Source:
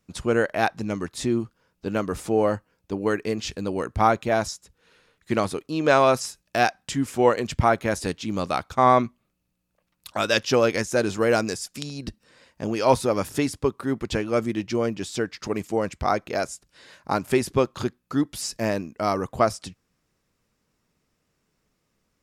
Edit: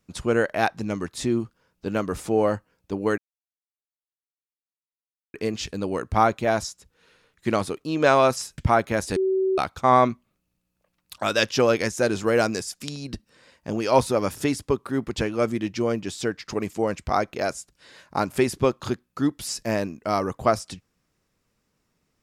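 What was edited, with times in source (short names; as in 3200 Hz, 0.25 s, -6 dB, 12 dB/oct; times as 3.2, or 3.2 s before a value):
3.18 insert silence 2.16 s
6.42–7.52 cut
8.1–8.52 bleep 380 Hz -19 dBFS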